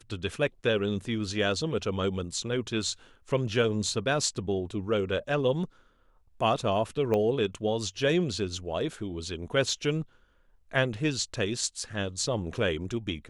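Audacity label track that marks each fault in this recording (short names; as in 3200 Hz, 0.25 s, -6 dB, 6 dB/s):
7.140000	7.140000	pop -17 dBFS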